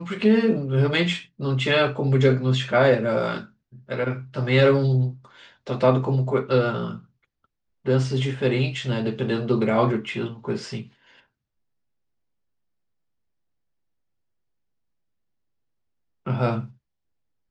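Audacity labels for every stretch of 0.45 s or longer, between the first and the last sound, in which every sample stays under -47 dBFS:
7.040000	7.850000	silence
11.200000	16.260000	silence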